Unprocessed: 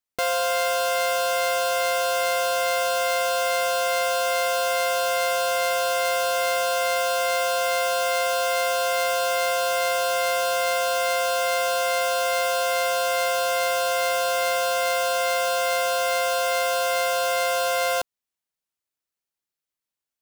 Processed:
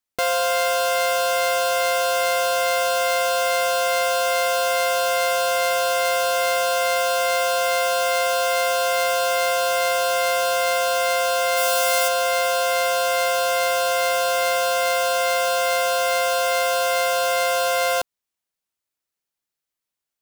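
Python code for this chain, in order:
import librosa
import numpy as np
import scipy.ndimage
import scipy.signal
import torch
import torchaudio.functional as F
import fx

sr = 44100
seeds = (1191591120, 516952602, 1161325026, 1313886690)

y = fx.high_shelf(x, sr, hz=fx.line((11.56, 8000.0), (12.07, 5100.0)), db=9.0, at=(11.56, 12.07), fade=0.02)
y = y * 10.0 ** (2.5 / 20.0)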